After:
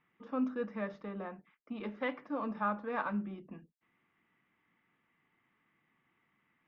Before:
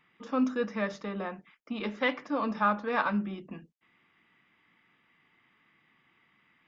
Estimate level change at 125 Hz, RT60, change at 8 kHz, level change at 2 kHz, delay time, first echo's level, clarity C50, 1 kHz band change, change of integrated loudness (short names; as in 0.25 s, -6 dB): -5.5 dB, none, n/a, -9.0 dB, none, none, none, -7.0 dB, -6.5 dB